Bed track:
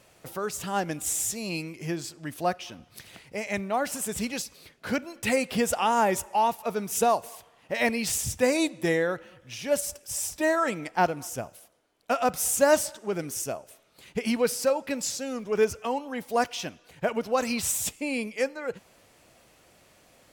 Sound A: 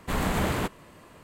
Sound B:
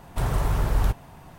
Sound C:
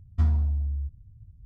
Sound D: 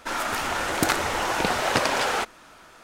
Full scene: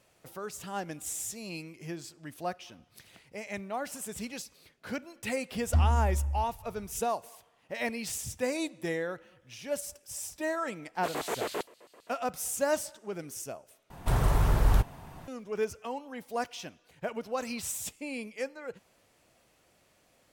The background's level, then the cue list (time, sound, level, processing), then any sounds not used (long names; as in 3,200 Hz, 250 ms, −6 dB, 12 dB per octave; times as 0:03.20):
bed track −8 dB
0:05.55: mix in C −2 dB
0:10.95: mix in A −5.5 dB + auto-filter high-pass square 7.6 Hz 430–4,200 Hz
0:13.90: overwrite with B −1 dB
not used: D